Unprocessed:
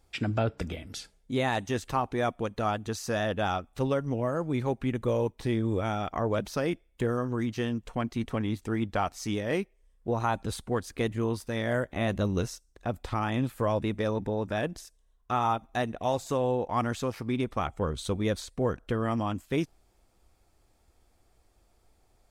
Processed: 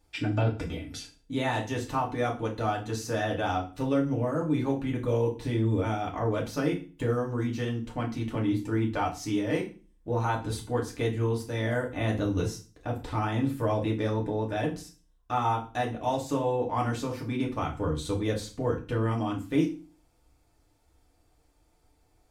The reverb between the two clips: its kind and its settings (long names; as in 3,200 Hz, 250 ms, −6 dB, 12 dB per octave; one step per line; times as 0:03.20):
feedback delay network reverb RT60 0.35 s, low-frequency decay 1.4×, high-frequency decay 0.95×, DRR −2 dB
level −4.5 dB